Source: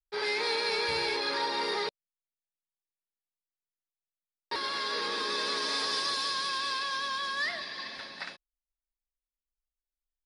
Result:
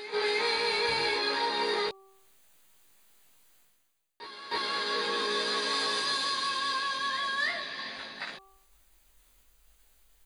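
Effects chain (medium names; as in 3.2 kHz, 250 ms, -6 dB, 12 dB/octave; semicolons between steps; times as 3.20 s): band-stop 5.4 kHz, Q 5; de-hum 387 Hz, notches 3; reverse; upward compressor, threshold -41 dBFS; reverse; doubling 19 ms -2.5 dB; reverse echo 313 ms -12.5 dB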